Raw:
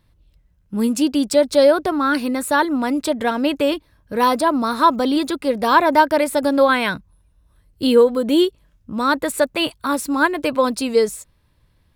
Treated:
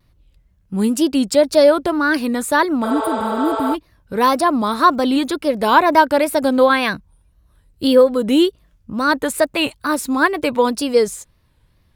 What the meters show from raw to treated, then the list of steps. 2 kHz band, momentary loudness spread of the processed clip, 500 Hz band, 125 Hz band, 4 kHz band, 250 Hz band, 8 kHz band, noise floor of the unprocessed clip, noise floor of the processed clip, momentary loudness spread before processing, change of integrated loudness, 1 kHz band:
+2.0 dB, 9 LU, +1.5 dB, +4.0 dB, +1.0 dB, +1.5 dB, +1.5 dB, -60 dBFS, -58 dBFS, 8 LU, +1.5 dB, +1.5 dB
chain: wow and flutter 130 cents; spectral replace 2.87–3.72 s, 360–8600 Hz before; trim +1.5 dB

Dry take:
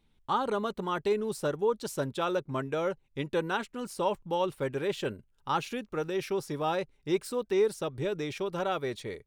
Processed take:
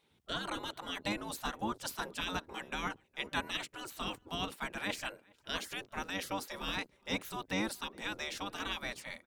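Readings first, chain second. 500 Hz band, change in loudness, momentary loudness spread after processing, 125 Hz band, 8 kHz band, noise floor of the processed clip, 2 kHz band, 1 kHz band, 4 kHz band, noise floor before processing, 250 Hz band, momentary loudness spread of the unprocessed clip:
-15.5 dB, -7.0 dB, 4 LU, -9.5 dB, 0.0 dB, -71 dBFS, +1.0 dB, -7.5 dB, +3.0 dB, -69 dBFS, -7.0 dB, 5 LU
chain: octave divider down 2 oct, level 0 dB; spectral gate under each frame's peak -15 dB weak; echo from a far wall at 71 m, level -27 dB; trim +4 dB

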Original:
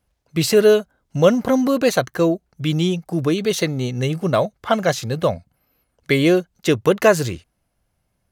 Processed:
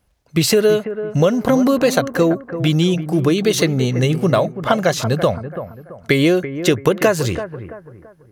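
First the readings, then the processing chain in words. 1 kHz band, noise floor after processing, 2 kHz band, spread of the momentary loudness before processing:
+1.5 dB, -48 dBFS, +2.0 dB, 8 LU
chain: compression, threshold -17 dBFS, peak gain reduction 9.5 dB; bucket-brigade echo 334 ms, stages 4096, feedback 35%, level -11 dB; trim +6 dB

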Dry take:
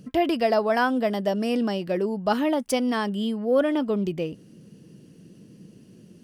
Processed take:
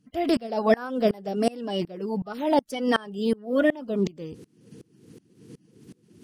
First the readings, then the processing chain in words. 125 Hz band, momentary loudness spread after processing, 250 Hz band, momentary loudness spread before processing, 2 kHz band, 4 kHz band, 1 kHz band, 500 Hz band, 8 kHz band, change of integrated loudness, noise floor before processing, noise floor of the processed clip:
-1.5 dB, 7 LU, -1.5 dB, 5 LU, -2.0 dB, -1.5 dB, -3.0 dB, -1.5 dB, -5.5 dB, -1.5 dB, -52 dBFS, -65 dBFS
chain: coarse spectral quantiser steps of 30 dB; sawtooth tremolo in dB swelling 2.7 Hz, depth 27 dB; trim +7.5 dB

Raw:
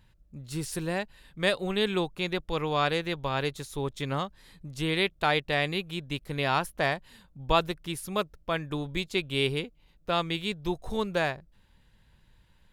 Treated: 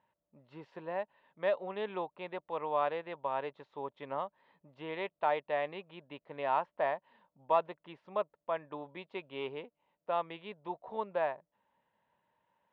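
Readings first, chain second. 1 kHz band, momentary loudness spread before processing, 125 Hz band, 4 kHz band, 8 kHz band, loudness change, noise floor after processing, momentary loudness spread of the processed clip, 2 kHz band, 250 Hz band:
-3.0 dB, 9 LU, -21.0 dB, -19.5 dB, under -35 dB, -7.0 dB, under -85 dBFS, 16 LU, -12.5 dB, -15.0 dB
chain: hard clipper -14 dBFS, distortion -27 dB; cabinet simulation 320–2500 Hz, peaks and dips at 340 Hz -4 dB, 610 Hz +8 dB, 940 Hz +9 dB, 1.5 kHz -5 dB, 2.3 kHz -5 dB; trim -8 dB

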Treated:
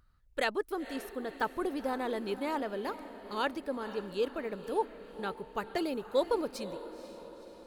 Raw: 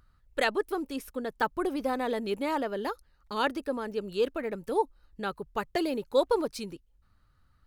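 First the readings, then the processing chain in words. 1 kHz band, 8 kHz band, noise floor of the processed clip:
-3.5 dB, -3.5 dB, -61 dBFS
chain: echo that smears into a reverb 499 ms, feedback 55%, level -13 dB; trim -4 dB

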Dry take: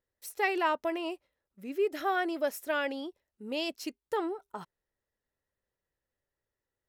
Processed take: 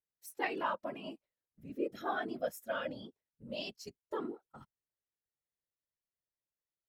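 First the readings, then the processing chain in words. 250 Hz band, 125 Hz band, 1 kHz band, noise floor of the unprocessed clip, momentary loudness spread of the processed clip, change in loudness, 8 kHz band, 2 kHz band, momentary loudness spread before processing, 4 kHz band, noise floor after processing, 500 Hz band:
-7.0 dB, no reading, -7.0 dB, under -85 dBFS, 19 LU, -7.0 dB, -7.5 dB, -7.5 dB, 16 LU, -7.0 dB, under -85 dBFS, -7.5 dB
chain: whisper effect; spectral noise reduction 9 dB; trim -6.5 dB

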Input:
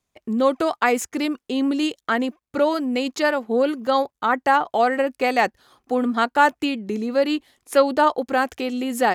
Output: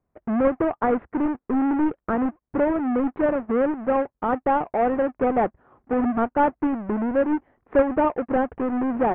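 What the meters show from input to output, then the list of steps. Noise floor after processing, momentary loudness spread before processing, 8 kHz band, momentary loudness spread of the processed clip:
-81 dBFS, 7 LU, under -40 dB, 4 LU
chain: square wave that keeps the level; in parallel at -1 dB: compression, threshold -23 dBFS, peak gain reduction 15 dB; on the sum: Gaussian low-pass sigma 5.7 samples; trim -6.5 dB

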